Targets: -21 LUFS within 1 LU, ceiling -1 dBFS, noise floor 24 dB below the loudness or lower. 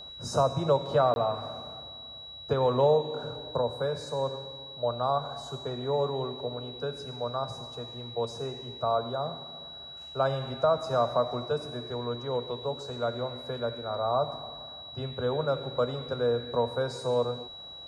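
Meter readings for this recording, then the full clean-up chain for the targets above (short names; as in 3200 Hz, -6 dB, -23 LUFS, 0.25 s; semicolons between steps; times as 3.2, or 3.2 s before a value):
dropouts 1; longest dropout 21 ms; steady tone 3900 Hz; tone level -42 dBFS; loudness -30.5 LUFS; peak -13.5 dBFS; loudness target -21.0 LUFS
-> interpolate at 1.14, 21 ms; notch 3900 Hz, Q 30; gain +9.5 dB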